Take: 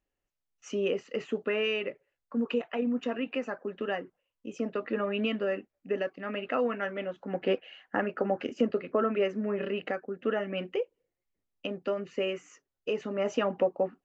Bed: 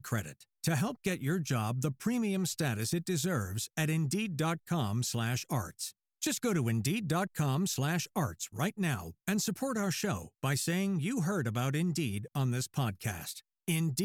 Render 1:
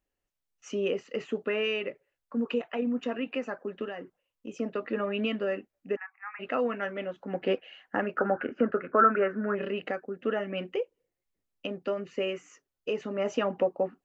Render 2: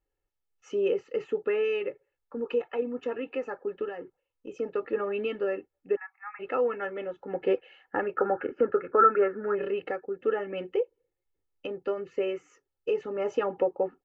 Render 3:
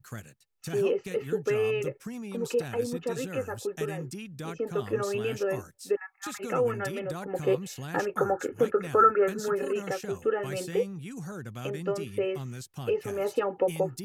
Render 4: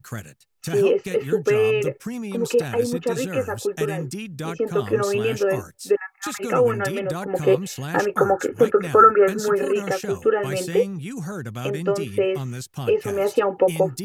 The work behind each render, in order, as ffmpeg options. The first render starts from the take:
-filter_complex "[0:a]asettb=1/sr,asplit=3[a][b][c];[a]atrim=end=3.844[d];[b]atrim=start=3.84:end=4.48,asetpts=PTS-STARTPTS,afade=t=in:d=0.004:c=qsin,afade=t=out:st=0.636:d=0.004:c=qsin,acompressor=threshold=-33dB:ratio=6:attack=3.2:release=140:knee=1:detection=peak[e];[c]atrim=start=4.476[f];[d][e]acrossfade=d=0.004:c1=hsin:c2=qsin[g];[g][f]acrossfade=d=0.004:c1=qsin:c2=hsin,asplit=3[h][i][j];[h]afade=t=out:st=5.95:d=0.02[k];[i]asuperpass=centerf=1400:order=20:qfactor=0.85,afade=t=in:st=5.95:d=0.02,afade=t=out:st=6.39:d=0.02[l];[j]afade=t=in:st=6.39:d=0.02[m];[k][l][m]amix=inputs=3:normalize=0,asettb=1/sr,asplit=3[n][o][p];[n]atrim=end=8.184[q];[o]atrim=start=8.18:end=9.55,asetpts=PTS-STARTPTS,afade=t=in:d=0.004:c=qsin,afade=t=out:st=1.366:d=0.004:c=qsin,lowpass=f=1.5k:t=q:w=8.7[r];[p]atrim=start=9.546[s];[q][r]acrossfade=d=0.004:c1=hsin:c2=qsin[t];[t][s]acrossfade=d=0.004:c1=qsin:c2=hsin"
-af "highshelf=f=2.4k:g=-11,aecho=1:1:2.3:0.67"
-filter_complex "[1:a]volume=-7dB[a];[0:a][a]amix=inputs=2:normalize=0"
-af "volume=8dB,alimiter=limit=-2dB:level=0:latency=1"

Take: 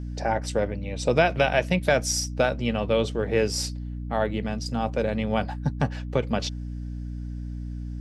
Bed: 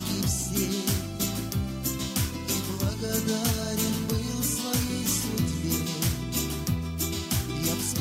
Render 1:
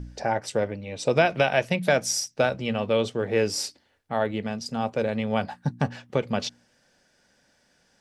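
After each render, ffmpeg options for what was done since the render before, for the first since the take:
-af "bandreject=f=60:t=h:w=4,bandreject=f=120:t=h:w=4,bandreject=f=180:t=h:w=4,bandreject=f=240:t=h:w=4,bandreject=f=300:t=h:w=4"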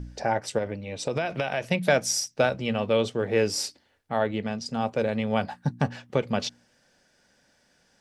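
-filter_complex "[0:a]asettb=1/sr,asplit=3[a][b][c];[a]atrim=end=0.584[d];[b]atrim=start=0.58:end=1.65,asetpts=PTS-STARTPTS,afade=t=in:d=0.004:c=qsin,afade=t=out:st=1.066:d=0.004:c=qsin,acompressor=threshold=-23dB:ratio=5:attack=3.2:release=140:knee=1:detection=peak[e];[c]atrim=start=1.646[f];[d][e]acrossfade=d=0.004:c1=hsin:c2=qsin[g];[g][f]acrossfade=d=0.004:c1=qsin:c2=hsin,asettb=1/sr,asplit=3[h][i][j];[h]atrim=end=4.214[k];[i]atrim=start=4.21:end=4.74,asetpts=PTS-STARTPTS,afade=t=in:d=0.004:c=qsin,afade=t=out:st=0.526:d=0.004:c=qsin,lowpass=8.3k[l];[j]atrim=start=4.736[m];[k][l]acrossfade=d=0.004:c1=hsin:c2=qsin[n];[n][m]acrossfade=d=0.004:c1=qsin:c2=hsin"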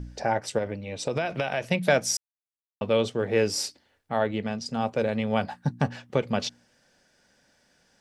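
-filter_complex "[0:a]asplit=3[a][b][c];[a]atrim=end=2.17,asetpts=PTS-STARTPTS,afade=t=out:st=2.166:d=0.004:c=hsin[d];[b]atrim=start=2.17:end=2.81,asetpts=PTS-STARTPTS,volume=0[e];[c]atrim=start=2.81,asetpts=PTS-STARTPTS,afade=t=in:d=0.004:c=hsin[f];[d][e][f]concat=n=3:v=0:a=1"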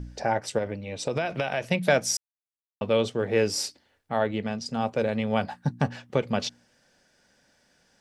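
-af anull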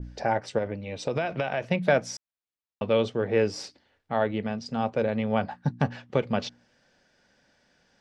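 -af "lowpass=5.1k,adynamicequalizer=threshold=0.00794:dfrequency=2200:dqfactor=0.7:tfrequency=2200:tqfactor=0.7:attack=5:release=100:ratio=0.375:range=3.5:mode=cutabove:tftype=highshelf"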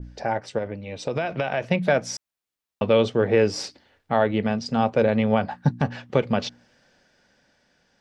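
-af "dynaudnorm=f=360:g=9:m=8.5dB,alimiter=limit=-8dB:level=0:latency=1:release=211"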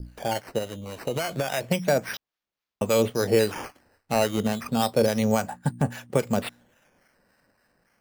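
-filter_complex "[0:a]acrusher=samples=9:mix=1:aa=0.000001:lfo=1:lforange=9:lforate=0.3,acrossover=split=780[a][b];[a]aeval=exprs='val(0)*(1-0.5/2+0.5/2*cos(2*PI*3.6*n/s))':c=same[c];[b]aeval=exprs='val(0)*(1-0.5/2-0.5/2*cos(2*PI*3.6*n/s))':c=same[d];[c][d]amix=inputs=2:normalize=0"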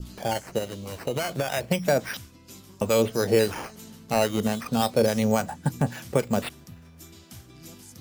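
-filter_complex "[1:a]volume=-18dB[a];[0:a][a]amix=inputs=2:normalize=0"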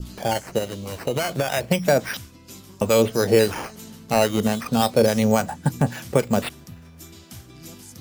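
-af "volume=4dB"

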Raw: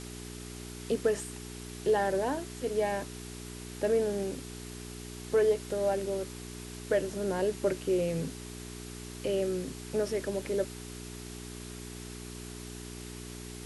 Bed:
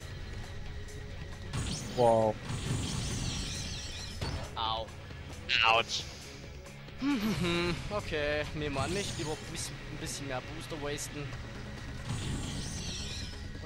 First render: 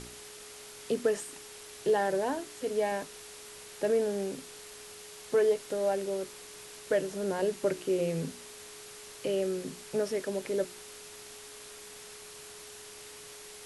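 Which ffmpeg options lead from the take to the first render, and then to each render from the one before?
-af "bandreject=f=60:t=h:w=4,bandreject=f=120:t=h:w=4,bandreject=f=180:t=h:w=4,bandreject=f=240:t=h:w=4,bandreject=f=300:t=h:w=4,bandreject=f=360:t=h:w=4"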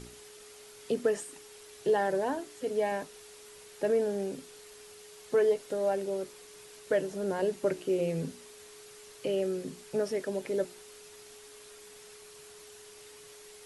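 -af "afftdn=nr=6:nf=-48"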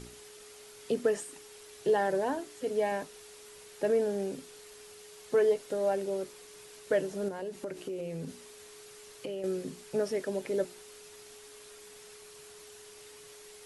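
-filter_complex "[0:a]asettb=1/sr,asplit=3[a][b][c];[a]atrim=end=7.284[d];[b]atrim=start=7.28:end=9.44,asetpts=PTS-STARTPTS,afade=t=in:d=0.004:c=qsin,afade=t=out:st=2.156:d=0.004:c=qsin,acompressor=threshold=-34dB:ratio=6:attack=3.2:release=140:knee=1:detection=peak[e];[c]atrim=start=9.436[f];[d][e]acrossfade=d=0.004:c1=hsin:c2=qsin[g];[g][f]acrossfade=d=0.004:c1=qsin:c2=hsin"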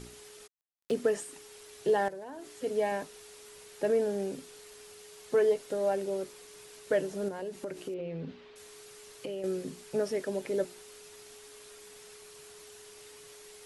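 -filter_complex "[0:a]asplit=3[a][b][c];[a]afade=t=out:st=0.46:d=0.02[d];[b]acrusher=bits=5:mix=0:aa=0.5,afade=t=in:st=0.46:d=0.02,afade=t=out:st=0.9:d=0.02[e];[c]afade=t=in:st=0.9:d=0.02[f];[d][e][f]amix=inputs=3:normalize=0,asettb=1/sr,asplit=3[g][h][i];[g]atrim=end=2.084[j];[h]atrim=start=2.08:end=2.53,asetpts=PTS-STARTPTS,afade=t=in:d=0.004:c=qsin,afade=t=out:st=0.446:d=0.004:c=qsin,acompressor=threshold=-39dB:ratio=8:attack=3.2:release=140:knee=1:detection=peak[k];[i]atrim=start=2.526[l];[j][k]acrossfade=d=0.004:c1=hsin:c2=qsin[m];[m][l]acrossfade=d=0.004:c1=qsin:c2=hsin,asettb=1/sr,asplit=3[n][o][p];[n]atrim=end=7.944[q];[o]atrim=start=7.94:end=8.56,asetpts=PTS-STARTPTS,afade=t=in:d=0.004:c=qsin,afade=t=out:st=0.616:d=0.004:c=qsin,lowpass=f=3.7k:w=0.5412,lowpass=f=3.7k:w=1.3066[r];[p]atrim=start=8.556[s];[q][r]acrossfade=d=0.004:c1=hsin:c2=qsin[t];[t][s]acrossfade=d=0.004:c1=qsin:c2=hsin"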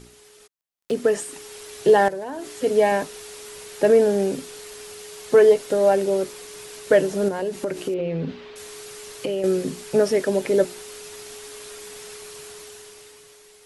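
-af "dynaudnorm=f=190:g=11:m=12dB"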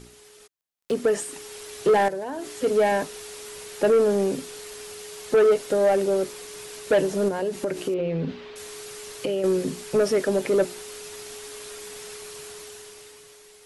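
-af "asoftclip=type=tanh:threshold=-13dB"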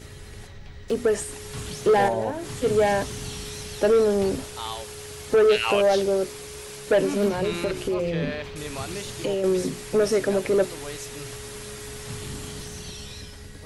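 -filter_complex "[1:a]volume=-0.5dB[a];[0:a][a]amix=inputs=2:normalize=0"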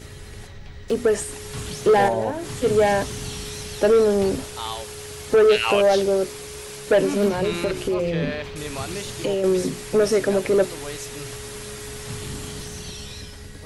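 -af "volume=2.5dB"

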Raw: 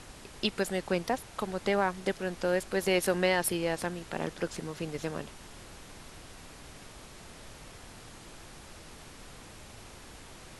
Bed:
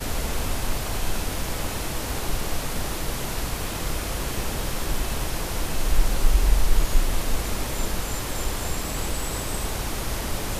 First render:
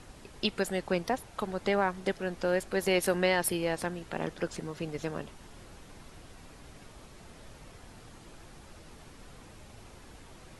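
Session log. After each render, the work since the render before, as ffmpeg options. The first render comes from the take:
-af "afftdn=nr=6:nf=-50"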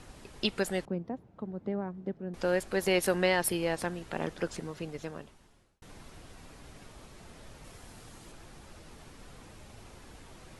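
-filter_complex "[0:a]asettb=1/sr,asplit=3[a][b][c];[a]atrim=end=0.854[d];[b]atrim=start=0.85:end=2.34,asetpts=PTS-STARTPTS,afade=t=in:d=0.004:c=qsin,afade=t=out:st=1.486:d=0.004:c=qsin,bandpass=f=190:t=q:w=1.1[e];[c]atrim=start=2.336[f];[d][e]acrossfade=d=0.004:c1=hsin:c2=qsin[g];[g][f]acrossfade=d=0.004:c1=qsin:c2=hsin,asettb=1/sr,asplit=3[h][i][j];[h]atrim=end=7.644[k];[i]atrim=start=7.64:end=8.32,asetpts=PTS-STARTPTS,afade=t=in:d=0.004:c=qsin,afade=t=out:st=0.676:d=0.004:c=qsin,highshelf=f=6.1k:g=6.5[l];[j]atrim=start=8.316[m];[k][l]acrossfade=d=0.004:c1=hsin:c2=qsin[n];[n][m]acrossfade=d=0.004:c1=qsin:c2=hsin,asplit=2[o][p];[o]atrim=end=5.82,asetpts=PTS-STARTPTS,afade=t=out:st=4.51:d=1.31[q];[p]atrim=start=5.82,asetpts=PTS-STARTPTS,afade=t=in:d=0.004:c=hsin[r];[q][r]concat=n=2:v=0:a=1"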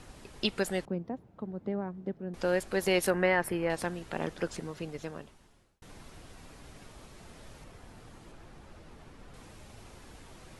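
-filter_complex "[0:a]asettb=1/sr,asplit=3[a][b][c];[a]atrim=end=3.104[d];[b]atrim=start=3.1:end=3.7,asetpts=PTS-STARTPTS,afade=t=in:d=0.004:c=qsin,afade=t=out:st=0.596:d=0.004:c=qsin,highshelf=f=2.7k:t=q:w=1.5:g=-10[e];[c]atrim=start=3.696[f];[d][e]acrossfade=d=0.004:c1=hsin:c2=qsin[g];[g][f]acrossfade=d=0.004:c1=qsin:c2=hsin,asettb=1/sr,asplit=3[h][i][j];[h]atrim=end=7.644[k];[i]atrim=start=7.64:end=9.34,asetpts=PTS-STARTPTS,afade=t=in:d=0.004:c=qsin,afade=t=out:st=1.696:d=0.004:c=qsin,highshelf=f=3.6k:g=-10[l];[j]atrim=start=9.336[m];[k][l]acrossfade=d=0.004:c1=hsin:c2=qsin[n];[n][m]acrossfade=d=0.004:c1=qsin:c2=hsin"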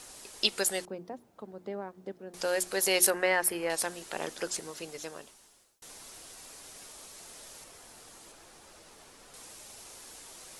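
-af "bass=f=250:g=-14,treble=f=4k:g=14,bandreject=f=60:t=h:w=6,bandreject=f=120:t=h:w=6,bandreject=f=180:t=h:w=6,bandreject=f=240:t=h:w=6,bandreject=f=300:t=h:w=6,bandreject=f=360:t=h:w=6"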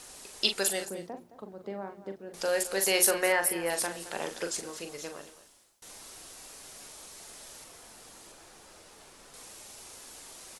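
-filter_complex "[0:a]asplit=2[a][b];[b]adelay=41,volume=-7.5dB[c];[a][c]amix=inputs=2:normalize=0,aecho=1:1:217:0.178"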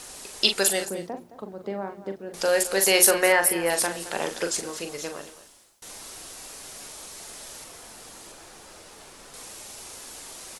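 -af "volume=6.5dB,alimiter=limit=-3dB:level=0:latency=1"

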